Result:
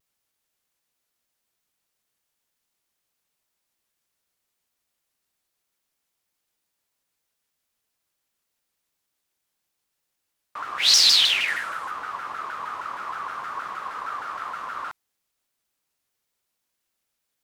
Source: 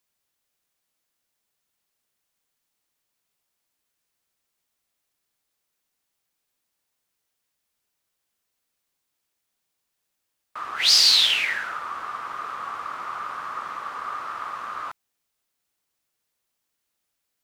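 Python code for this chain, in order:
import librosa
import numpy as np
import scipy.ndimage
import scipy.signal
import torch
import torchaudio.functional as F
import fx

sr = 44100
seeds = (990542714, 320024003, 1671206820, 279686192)

y = fx.peak_eq(x, sr, hz=9900.0, db=8.0, octaves=0.82, at=(11.48, 11.91))
y = fx.vibrato_shape(y, sr, shape='saw_down', rate_hz=6.4, depth_cents=250.0)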